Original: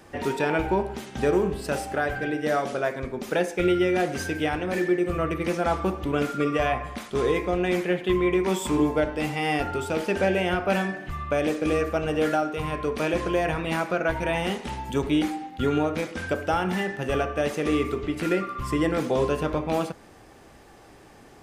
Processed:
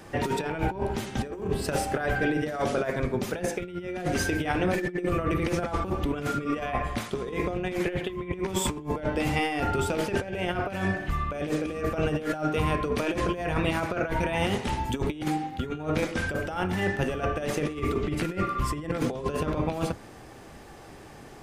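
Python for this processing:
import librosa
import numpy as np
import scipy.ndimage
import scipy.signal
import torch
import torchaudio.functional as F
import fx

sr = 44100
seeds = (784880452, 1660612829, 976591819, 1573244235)

y = fx.octave_divider(x, sr, octaves=1, level_db=-4.0)
y = fx.over_compress(y, sr, threshold_db=-27.0, ratio=-0.5)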